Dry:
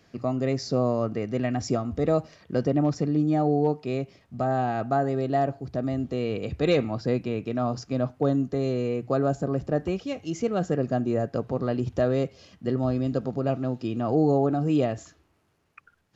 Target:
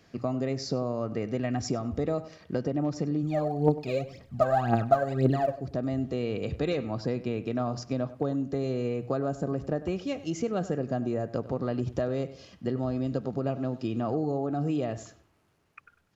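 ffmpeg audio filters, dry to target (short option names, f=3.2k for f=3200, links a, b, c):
-filter_complex "[0:a]acompressor=threshold=-25dB:ratio=6,asplit=3[a][b][c];[a]afade=t=out:st=3.22:d=0.02[d];[b]aphaser=in_gain=1:out_gain=1:delay=2:decay=0.78:speed=1.9:type=triangular,afade=t=in:st=3.22:d=0.02,afade=t=out:st=5.57:d=0.02[e];[c]afade=t=in:st=5.57:d=0.02[f];[d][e][f]amix=inputs=3:normalize=0,asplit=2[g][h];[h]adelay=98,lowpass=f=3.7k:p=1,volume=-16dB,asplit=2[i][j];[j]adelay=98,lowpass=f=3.7k:p=1,volume=0.31,asplit=2[k][l];[l]adelay=98,lowpass=f=3.7k:p=1,volume=0.31[m];[g][i][k][m]amix=inputs=4:normalize=0"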